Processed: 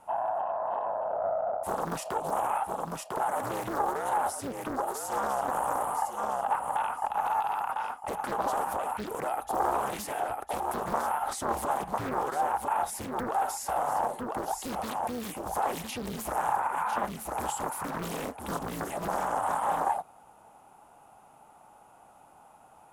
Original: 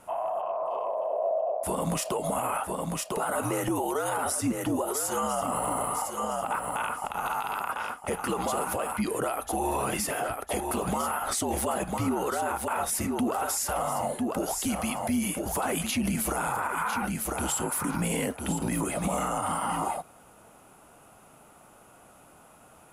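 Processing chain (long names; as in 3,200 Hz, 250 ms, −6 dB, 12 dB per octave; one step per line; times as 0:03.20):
parametric band 840 Hz +14 dB 0.53 octaves
highs frequency-modulated by the lows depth 0.99 ms
level −7.5 dB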